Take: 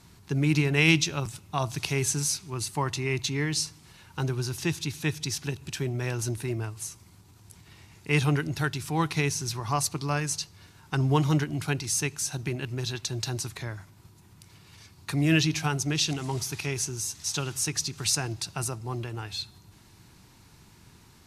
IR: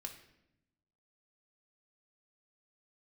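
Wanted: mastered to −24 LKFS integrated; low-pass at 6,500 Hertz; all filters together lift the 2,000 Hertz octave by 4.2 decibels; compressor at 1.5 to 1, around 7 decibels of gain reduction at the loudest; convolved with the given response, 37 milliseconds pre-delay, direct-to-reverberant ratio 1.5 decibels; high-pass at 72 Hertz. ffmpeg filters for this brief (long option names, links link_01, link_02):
-filter_complex "[0:a]highpass=72,lowpass=6500,equalizer=frequency=2000:width_type=o:gain=5.5,acompressor=threshold=-33dB:ratio=1.5,asplit=2[link_01][link_02];[1:a]atrim=start_sample=2205,adelay=37[link_03];[link_02][link_03]afir=irnorm=-1:irlink=0,volume=2dB[link_04];[link_01][link_04]amix=inputs=2:normalize=0,volume=5.5dB"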